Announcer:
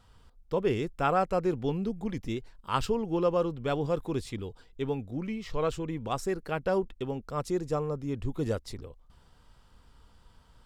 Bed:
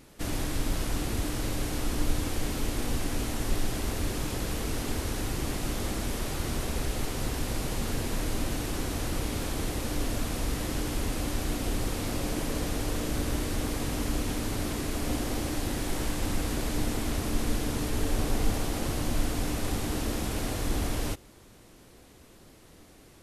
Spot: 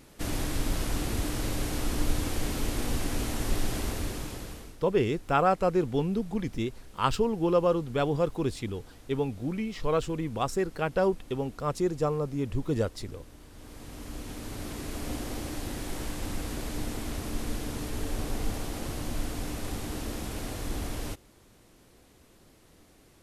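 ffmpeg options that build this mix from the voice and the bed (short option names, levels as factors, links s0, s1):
-filter_complex "[0:a]adelay=4300,volume=1.33[s0];[1:a]volume=7.08,afade=t=out:st=3.78:d=0.99:silence=0.0841395,afade=t=in:st=13.51:d=1.48:silence=0.141254[s1];[s0][s1]amix=inputs=2:normalize=0"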